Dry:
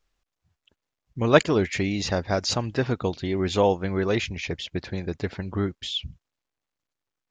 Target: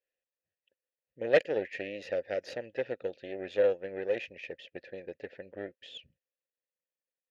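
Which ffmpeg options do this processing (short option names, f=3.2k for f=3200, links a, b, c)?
-filter_complex "[0:a]aeval=exprs='0.75*(cos(1*acos(clip(val(0)/0.75,-1,1)))-cos(1*PI/2))+0.376*(cos(4*acos(clip(val(0)/0.75,-1,1)))-cos(4*PI/2))':c=same,asplit=3[a][b][c];[a]bandpass=f=530:t=q:w=8,volume=0dB[d];[b]bandpass=f=1.84k:t=q:w=8,volume=-6dB[e];[c]bandpass=f=2.48k:t=q:w=8,volume=-9dB[f];[d][e][f]amix=inputs=3:normalize=0"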